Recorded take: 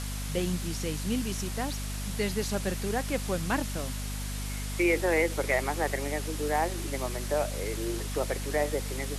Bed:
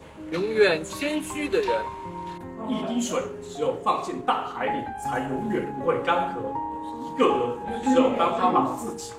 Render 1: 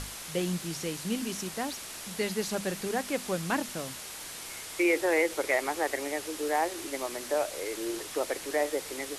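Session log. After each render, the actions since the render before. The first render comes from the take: notches 50/100/150/200/250 Hz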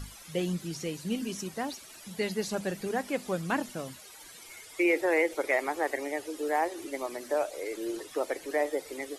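denoiser 14 dB, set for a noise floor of -42 dBFS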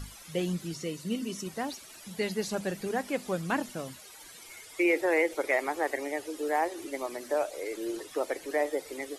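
0.73–1.47 notch comb 820 Hz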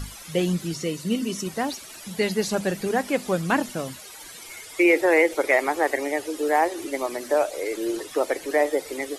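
gain +7.5 dB

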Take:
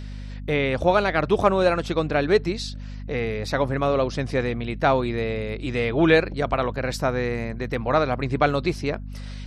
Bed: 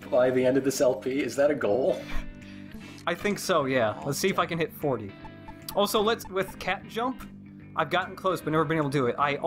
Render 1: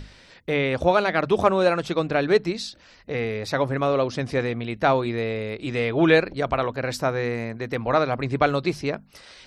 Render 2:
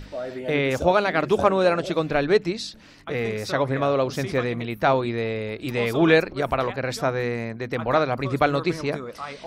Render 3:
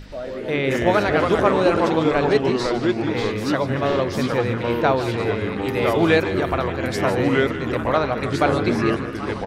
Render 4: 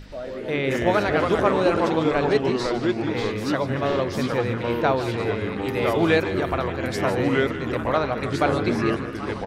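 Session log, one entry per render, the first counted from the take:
notches 50/100/150/200/250 Hz
add bed -9.5 dB
feedback echo 0.152 s, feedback 48%, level -13 dB; echoes that change speed 96 ms, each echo -3 st, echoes 3
gain -2.5 dB

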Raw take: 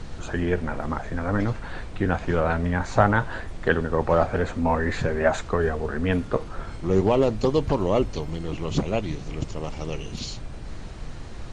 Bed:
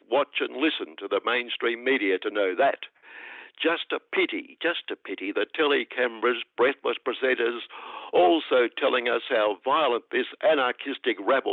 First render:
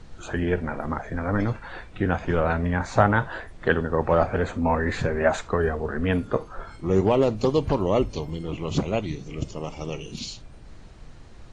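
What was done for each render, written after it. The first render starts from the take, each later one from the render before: noise print and reduce 9 dB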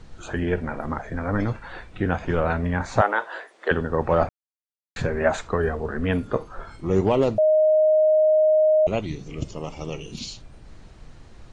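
3.01–3.71 HPF 380 Hz 24 dB/oct; 4.29–4.96 mute; 7.38–8.87 bleep 621 Hz -14 dBFS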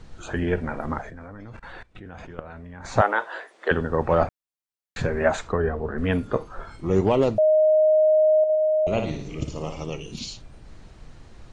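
1.09–2.85 level quantiser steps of 20 dB; 5.52–5.98 LPF 1600 Hz 6 dB/oct; 8.38–9.84 flutter echo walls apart 9.8 m, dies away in 0.56 s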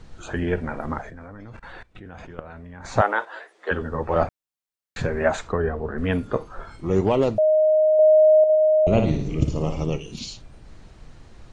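3.25–4.16 ensemble effect; 7.99–9.98 low shelf 490 Hz +9.5 dB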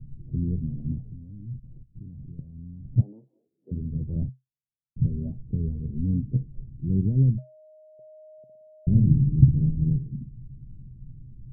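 inverse Chebyshev low-pass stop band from 1400 Hz, stop band 80 dB; bell 130 Hz +14.5 dB 0.32 oct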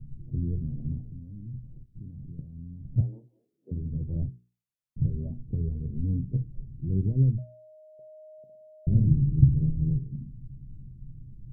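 notches 60/120/180/240/300/360/420 Hz; dynamic EQ 210 Hz, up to -6 dB, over -37 dBFS, Q 1.7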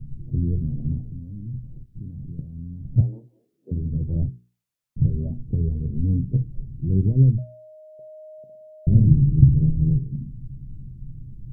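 gain +6.5 dB; limiter -1 dBFS, peak gain reduction 2.5 dB

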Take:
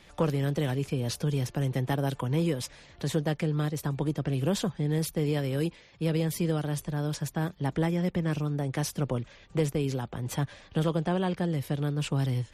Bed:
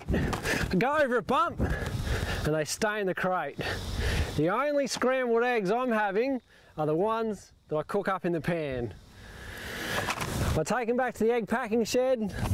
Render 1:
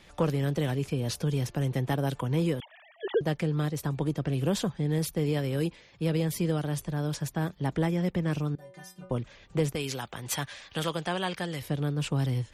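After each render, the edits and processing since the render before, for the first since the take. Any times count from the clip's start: 2.6–3.21 sine-wave speech; 8.55–9.11 metallic resonator 180 Hz, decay 0.46 s, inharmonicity 0.008; 9.75–11.62 tilt shelf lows -8 dB, about 760 Hz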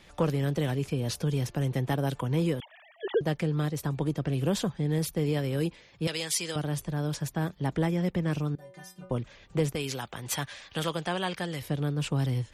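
6.07–6.56 weighting filter ITU-R 468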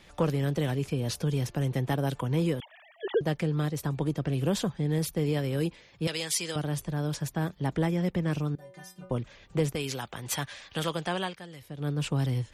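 11.22–11.89 dip -11 dB, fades 0.13 s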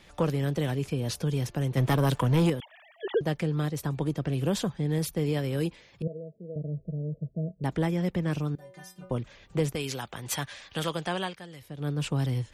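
1.77–2.5 sample leveller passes 2; 6.02–7.64 rippled Chebyshev low-pass 670 Hz, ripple 9 dB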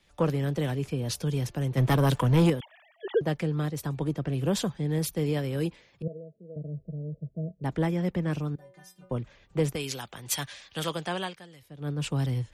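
three-band expander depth 40%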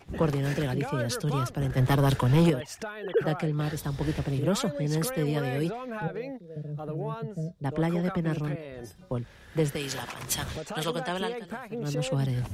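add bed -9 dB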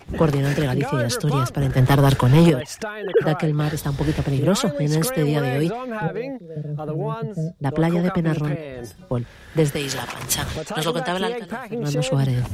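gain +7.5 dB

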